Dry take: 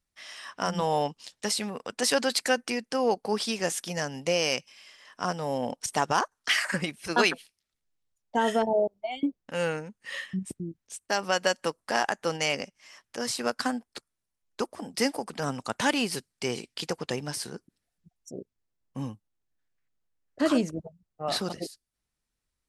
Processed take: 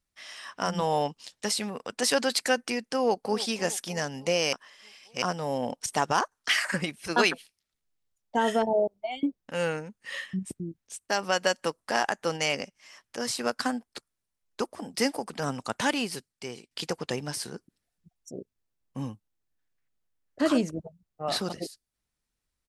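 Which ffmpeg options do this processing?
ffmpeg -i in.wav -filter_complex "[0:a]asplit=2[link_01][link_02];[link_02]afade=type=in:start_time=2.96:duration=0.01,afade=type=out:start_time=3.46:duration=0.01,aecho=0:1:310|620|930|1240|1550:0.158489|0.0871691|0.047943|0.0263687|0.0145028[link_03];[link_01][link_03]amix=inputs=2:normalize=0,asplit=4[link_04][link_05][link_06][link_07];[link_04]atrim=end=4.532[link_08];[link_05]atrim=start=4.528:end=5.222,asetpts=PTS-STARTPTS,areverse[link_09];[link_06]atrim=start=5.218:end=16.71,asetpts=PTS-STARTPTS,afade=type=out:start_time=10.492:duration=1:silence=0.223872[link_10];[link_07]atrim=start=16.71,asetpts=PTS-STARTPTS,afade=type=in:duration=0.004:curve=hsin:silence=0.223872[link_11];[link_08][link_09]acrossfade=duration=0.004:curve1=hsin:curve2=hsin[link_12];[link_10][link_11]concat=n=2:v=0:a=1[link_13];[link_12][link_13]acrossfade=duration=0.004:curve1=hsin:curve2=hsin" out.wav

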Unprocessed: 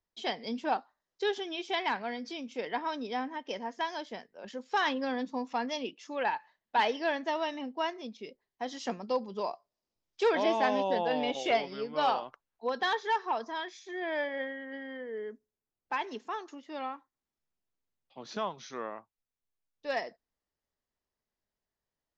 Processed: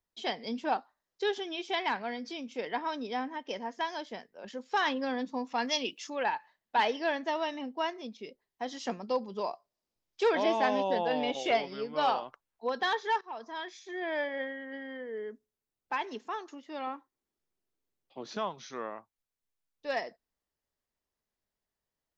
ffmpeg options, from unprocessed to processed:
ffmpeg -i in.wav -filter_complex "[0:a]asettb=1/sr,asplit=3[link_01][link_02][link_03];[link_01]atrim=end=5.584[link_04];[link_02]atrim=start=5.58:end=6.1,asetpts=PTS-STARTPTS,afade=type=in:duration=0.004:curve=qsin,afade=type=out:start_time=0.516:duration=0.004:curve=qsin,highshelf=frequency=2000:gain=10.5[link_05];[link_03]atrim=start=6.096[link_06];[link_04][link_05]acrossfade=duration=0.004:curve1=hsin:curve2=qsin[link_07];[link_07][link_06]acrossfade=duration=0.004:curve1=qsin:curve2=hsin,asettb=1/sr,asplit=3[link_08][link_09][link_10];[link_08]atrim=end=16.874[link_11];[link_09]atrim=start=16.87:end=18.29,asetpts=PTS-STARTPTS,afade=type=in:duration=0.004:curve=qsin,afade=type=out:start_time=1.416:duration=0.004:curve=qsin,equalizer=frequency=370:width=1.5:gain=8[link_12];[link_10]atrim=start=18.286[link_13];[link_11][link_12]acrossfade=duration=0.004:curve1=hsin:curve2=qsin[link_14];[link_14][link_13]acrossfade=duration=0.004:curve1=qsin:curve2=hsin,asplit=2[link_15][link_16];[link_15]atrim=end=13.21,asetpts=PTS-STARTPTS,afade=type=out:start_time=13.206:duration=0.004:curve=hsin:silence=0.141254[link_17];[link_16]atrim=start=13.21,asetpts=PTS-STARTPTS,afade=type=in:duration=0.52:silence=0.141254[link_18];[link_17][link_18]concat=n=2:v=0:a=1" out.wav

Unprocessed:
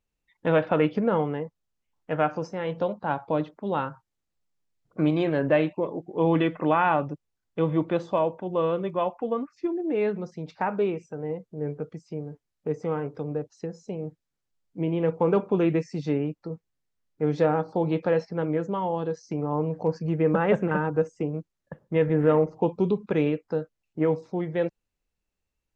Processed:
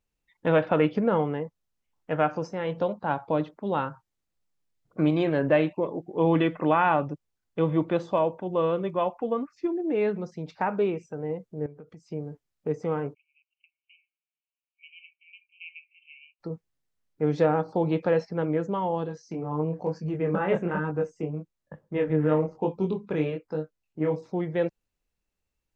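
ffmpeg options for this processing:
ffmpeg -i in.wav -filter_complex "[0:a]asettb=1/sr,asplit=3[link_01][link_02][link_03];[link_01]atrim=end=11.664[link_04];[link_02]atrim=start=11.66:end=12.06,asetpts=PTS-STARTPTS,afade=type=in:duration=0.004:curve=qsin,afade=type=out:start_time=0.396:duration=0.004:curve=qsin,acompressor=threshold=-44dB:ratio=4:attack=3.2:release=140:knee=1:detection=peak[link_05];[link_03]atrim=start=12.056[link_06];[link_04][link_05]acrossfade=duration=0.004:curve1=hsin:curve2=qsin[link_07];[link_07][link_06]acrossfade=duration=0.004:curve1=qsin:curve2=hsin,asplit=3[link_08][link_09][link_10];[link_08]afade=type=out:start_time=13.13:duration=0.02[link_11];[link_09]asuperpass=centerf=2600:order=20:qfactor=2.9,afade=type=in:start_time=13.13:duration=0.02,afade=type=out:start_time=16.39:duration=0.02[link_12];[link_10]afade=type=in:start_time=16.39:duration=0.02[link_13];[link_11][link_12][link_13]amix=inputs=3:normalize=0,asplit=3[link_14][link_15][link_16];[link_14]afade=type=out:start_time=19.05:duration=0.02[link_17];[link_15]flanger=delay=19.5:depth=6.9:speed=1.1,afade=type=in:start_time=19.05:duration=0.02,afade=type=out:start_time=24.15:duration=0.02[link_18];[link_16]afade=type=in:start_time=24.15:duration=0.02[link_19];[link_17][link_18][link_19]amix=inputs=3:normalize=0" out.wav

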